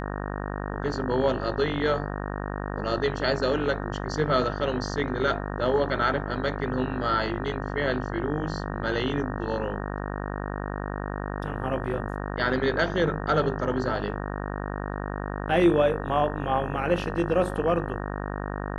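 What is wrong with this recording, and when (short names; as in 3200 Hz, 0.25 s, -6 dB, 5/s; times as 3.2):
buzz 50 Hz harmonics 37 -32 dBFS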